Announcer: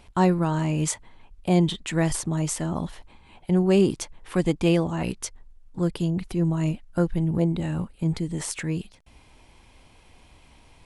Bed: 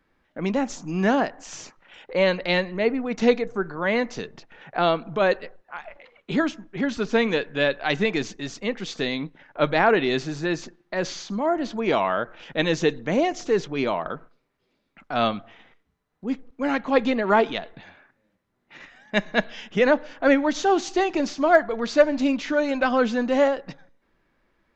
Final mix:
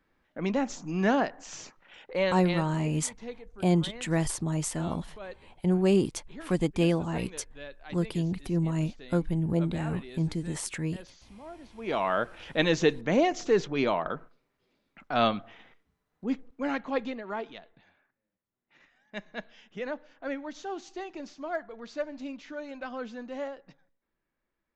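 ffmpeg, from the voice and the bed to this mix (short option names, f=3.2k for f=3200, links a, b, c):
-filter_complex "[0:a]adelay=2150,volume=-4dB[a];[1:a]volume=16dB,afade=t=out:st=1.96:d=0.84:silence=0.125893,afade=t=in:st=11.74:d=0.44:silence=0.1,afade=t=out:st=16.18:d=1.06:silence=0.188365[b];[a][b]amix=inputs=2:normalize=0"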